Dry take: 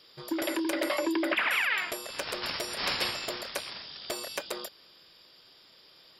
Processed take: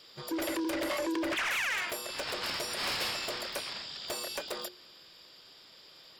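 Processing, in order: saturation -31 dBFS, distortion -9 dB; hum notches 60/120/180/240/300/360/420/480 Hz; harmony voices +7 st -17 dB; trim +2 dB

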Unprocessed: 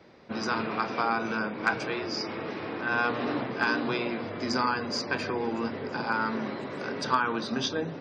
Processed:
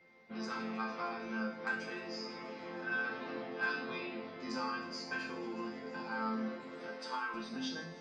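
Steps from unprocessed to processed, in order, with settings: 6.91–7.34 s: high-pass 430 Hz 12 dB/octave; chord resonator F3 major, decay 0.56 s; whistle 2.1 kHz -72 dBFS; on a send: feedback echo behind a high-pass 156 ms, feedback 83%, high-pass 5.2 kHz, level -15 dB; on the sum: trim +8.5 dB

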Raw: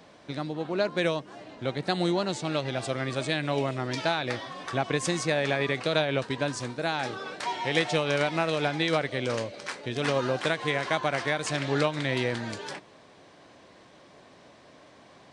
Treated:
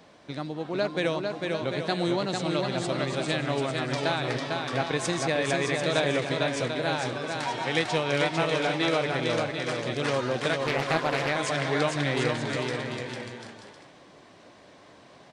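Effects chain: bouncing-ball echo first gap 450 ms, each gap 0.65×, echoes 5; 10.66–11.36 s: loudspeaker Doppler distortion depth 0.51 ms; trim -1 dB

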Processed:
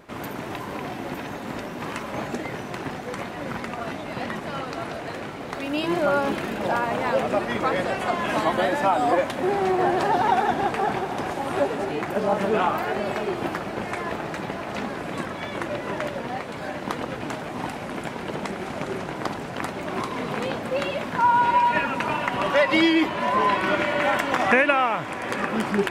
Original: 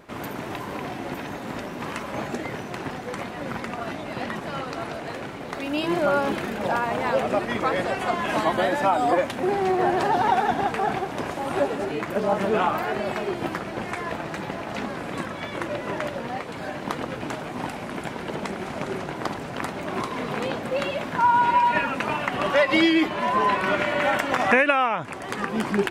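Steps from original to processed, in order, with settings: echo that smears into a reverb 778 ms, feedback 67%, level -14 dB

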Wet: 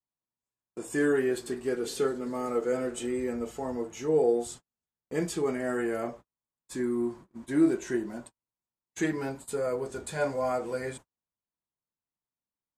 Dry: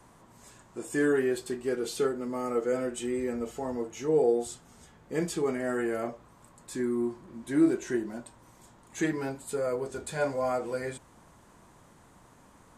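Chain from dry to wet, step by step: gate -44 dBFS, range -44 dB; 1.08–3.13 s: modulated delay 196 ms, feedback 78%, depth 131 cents, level -23 dB

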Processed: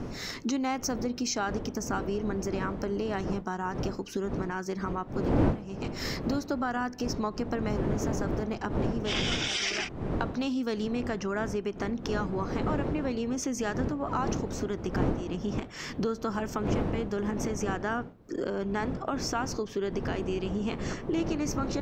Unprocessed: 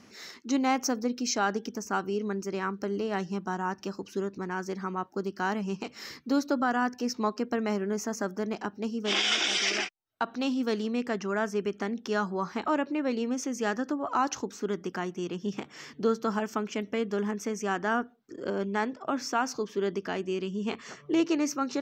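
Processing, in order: recorder AGC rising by 26 dB/s; wind noise 330 Hz -25 dBFS; compression 3:1, threshold -27 dBFS, peak gain reduction 18 dB

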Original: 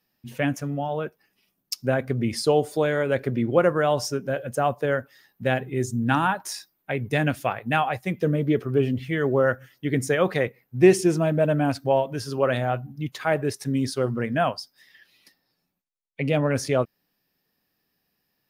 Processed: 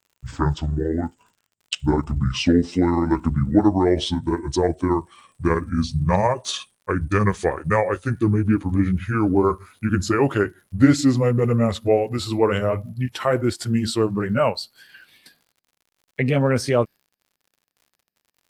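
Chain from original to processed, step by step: pitch bend over the whole clip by -11 st ending unshifted; in parallel at -0.5 dB: compression, threshold -29 dBFS, peak gain reduction 16 dB; on the sum: gate with hold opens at -50 dBFS; crackle 73 per s -49 dBFS; trim +2 dB

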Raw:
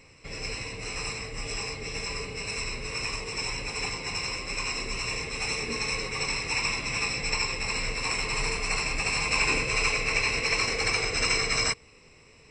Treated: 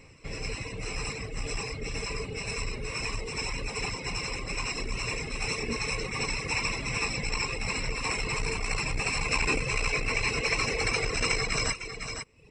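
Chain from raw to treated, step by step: bass shelf 440 Hz +5 dB; on a send: delay 503 ms -9 dB; on the sum: reverb removal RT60 0.67 s; peaking EQ 4.7 kHz -2.5 dB 0.77 oct; transformer saturation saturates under 180 Hz

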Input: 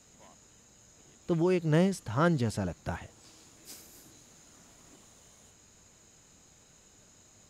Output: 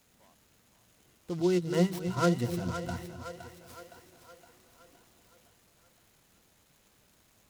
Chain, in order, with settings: 1.38–3.03 s: rippled EQ curve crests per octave 2, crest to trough 18 dB; two-band feedback delay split 450 Hz, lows 258 ms, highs 515 ms, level -8.5 dB; delay time shaken by noise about 4.3 kHz, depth 0.036 ms; trim -6.5 dB

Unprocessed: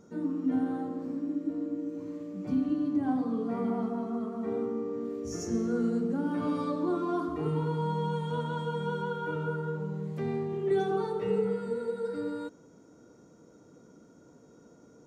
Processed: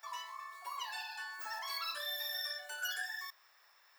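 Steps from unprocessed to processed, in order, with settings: wide varispeed 3.78×; differentiator; trim +2 dB

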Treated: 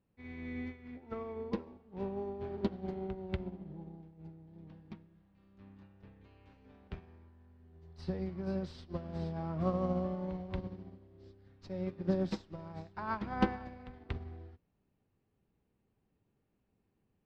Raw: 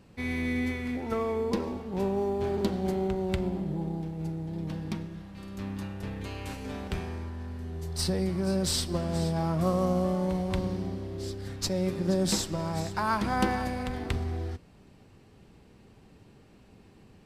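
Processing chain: distance through air 250 m; upward expansion 2.5:1, over -37 dBFS

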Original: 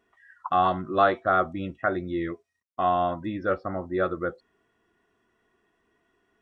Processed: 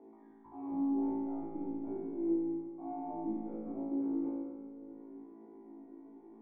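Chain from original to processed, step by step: partial rectifier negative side -7 dB; steep high-pass 180 Hz 96 dB/octave; treble shelf 3.4 kHz +10 dB; upward compressor, threshold -28 dBFS; waveshaping leveller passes 1; reverse; compression 6:1, threshold -29 dBFS, peak gain reduction 13 dB; reverse; wavefolder -27.5 dBFS; cascade formant filter u; flutter echo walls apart 3.1 m, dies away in 1.4 s; on a send at -5.5 dB: reverberation RT60 2.1 s, pre-delay 95 ms; on the sum: trim -2.5 dB

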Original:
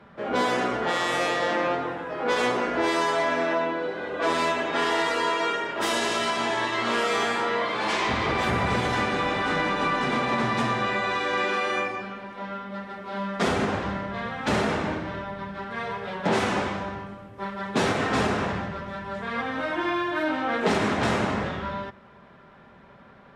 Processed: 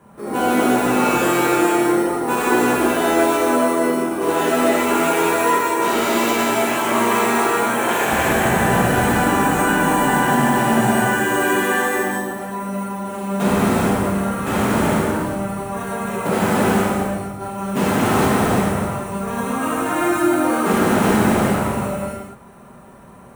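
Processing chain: treble shelf 11 kHz -10 dB; band-stop 6.1 kHz, Q 8; formant shift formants -5 st; sample-rate reducer 9.8 kHz, jitter 0%; gated-style reverb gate 470 ms flat, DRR -7.5 dB

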